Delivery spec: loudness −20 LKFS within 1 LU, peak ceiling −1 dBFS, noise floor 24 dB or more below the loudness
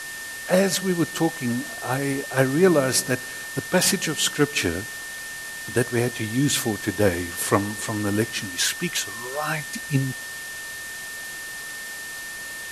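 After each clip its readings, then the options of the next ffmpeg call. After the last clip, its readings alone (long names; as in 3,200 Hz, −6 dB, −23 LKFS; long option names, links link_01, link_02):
interfering tone 1,800 Hz; level of the tone −34 dBFS; background noise floor −35 dBFS; target noise floor −49 dBFS; integrated loudness −24.5 LKFS; sample peak −2.5 dBFS; target loudness −20.0 LKFS
→ -af "bandreject=frequency=1800:width=30"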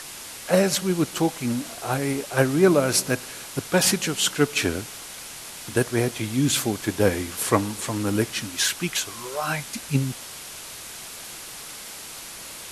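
interfering tone none found; background noise floor −39 dBFS; target noise floor −48 dBFS
→ -af "afftdn=noise_reduction=9:noise_floor=-39"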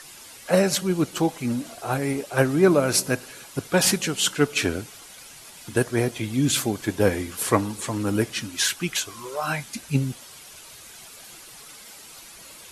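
background noise floor −45 dBFS; target noise floor −48 dBFS
→ -af "afftdn=noise_reduction=6:noise_floor=-45"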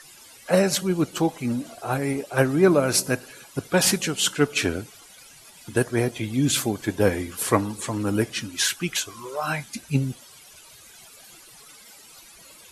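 background noise floor −49 dBFS; integrated loudness −24.0 LKFS; sample peak −2.5 dBFS; target loudness −20.0 LKFS
→ -af "volume=4dB,alimiter=limit=-1dB:level=0:latency=1"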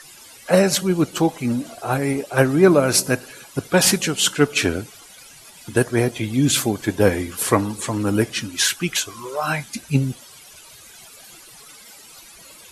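integrated loudness −20.0 LKFS; sample peak −1.0 dBFS; background noise floor −45 dBFS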